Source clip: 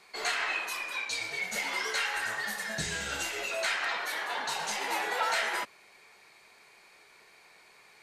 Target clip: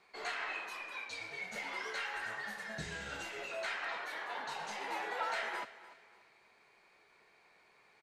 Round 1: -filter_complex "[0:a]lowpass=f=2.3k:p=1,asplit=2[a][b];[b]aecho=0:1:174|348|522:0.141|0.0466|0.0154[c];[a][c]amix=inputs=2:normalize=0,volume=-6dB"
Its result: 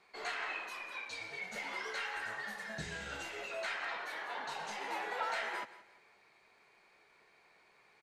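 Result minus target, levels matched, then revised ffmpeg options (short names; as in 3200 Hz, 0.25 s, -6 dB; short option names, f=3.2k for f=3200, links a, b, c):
echo 0.118 s early
-filter_complex "[0:a]lowpass=f=2.3k:p=1,asplit=2[a][b];[b]aecho=0:1:292|584|876:0.141|0.0466|0.0154[c];[a][c]amix=inputs=2:normalize=0,volume=-6dB"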